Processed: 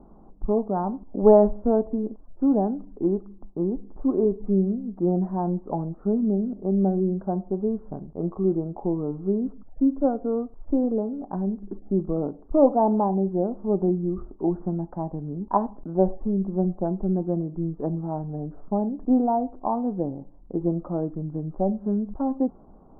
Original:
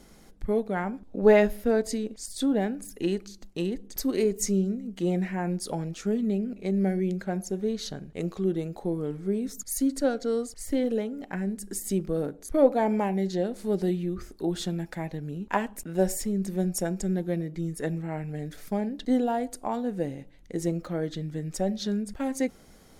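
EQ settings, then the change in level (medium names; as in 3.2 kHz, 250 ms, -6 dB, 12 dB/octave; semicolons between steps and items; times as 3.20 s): steep low-pass 1.1 kHz 48 dB/octave; peaking EQ 99 Hz -6 dB 1.9 oct; peaking EQ 490 Hz -7 dB 0.37 oct; +6.5 dB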